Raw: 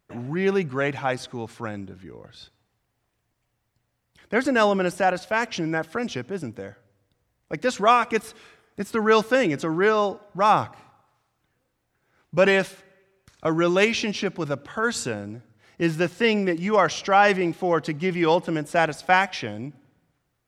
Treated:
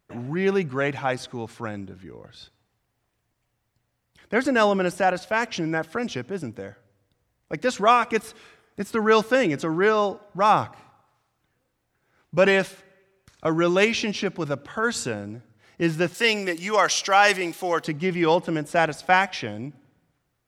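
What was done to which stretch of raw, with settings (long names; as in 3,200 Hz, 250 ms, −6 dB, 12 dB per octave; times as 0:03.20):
0:16.14–0:17.85: RIAA equalisation recording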